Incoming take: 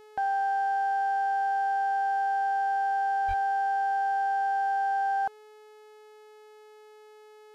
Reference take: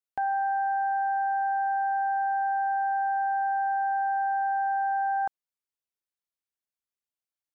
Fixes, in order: clip repair -23.5 dBFS; de-hum 426.8 Hz, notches 34; de-plosive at 3.27

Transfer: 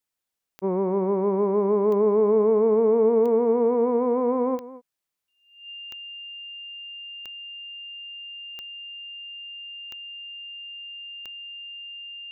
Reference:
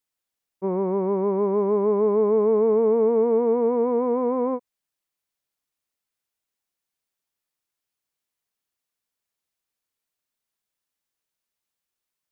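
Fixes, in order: de-click; notch 2800 Hz, Q 30; inverse comb 0.22 s -16.5 dB

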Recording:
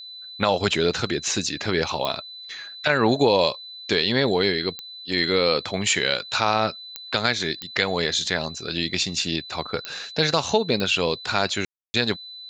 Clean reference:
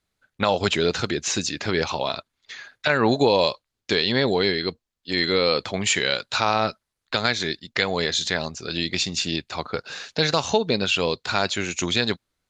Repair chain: de-click; notch 4000 Hz, Q 30; room tone fill 11.65–11.94

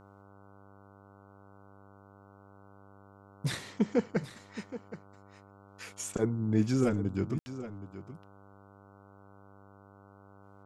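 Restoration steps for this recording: de-hum 99.1 Hz, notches 15; room tone fill 7.39–7.46; inverse comb 0.772 s -13.5 dB

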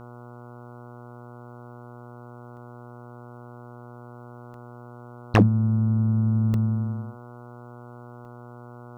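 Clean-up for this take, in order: clip repair -8 dBFS; de-hum 121.1 Hz, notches 12; interpolate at 2.57/4.54/6.54/8.25, 1.3 ms

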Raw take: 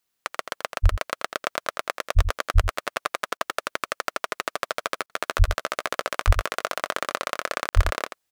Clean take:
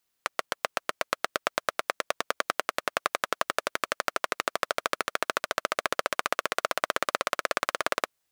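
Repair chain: de-plosive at 0.82/2.15/2.54/5.38/6.26/7.75; interpolate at 3.37/5.06/7.69, 38 ms; inverse comb 84 ms -10 dB

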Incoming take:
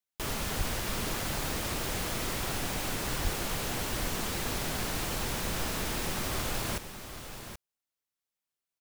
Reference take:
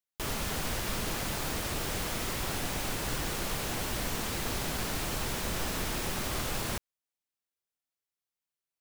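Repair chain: 0.57–0.69 HPF 140 Hz 24 dB/oct; 3.23–3.35 HPF 140 Hz 24 dB/oct; inverse comb 0.778 s -10 dB

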